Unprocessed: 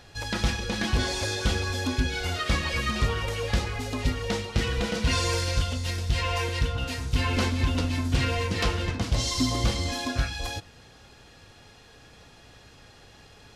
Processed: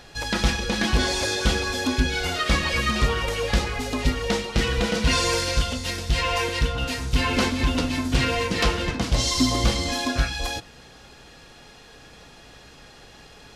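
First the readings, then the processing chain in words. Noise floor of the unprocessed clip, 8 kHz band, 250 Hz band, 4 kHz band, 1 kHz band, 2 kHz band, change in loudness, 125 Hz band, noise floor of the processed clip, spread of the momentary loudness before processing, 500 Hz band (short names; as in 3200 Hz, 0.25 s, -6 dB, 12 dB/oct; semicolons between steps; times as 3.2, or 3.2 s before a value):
-52 dBFS, +5.0 dB, +4.5 dB, +5.0 dB, +5.0 dB, +5.0 dB, +4.0 dB, +0.5 dB, -48 dBFS, 4 LU, +5.0 dB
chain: bell 95 Hz -13.5 dB 0.37 oct; gain +5 dB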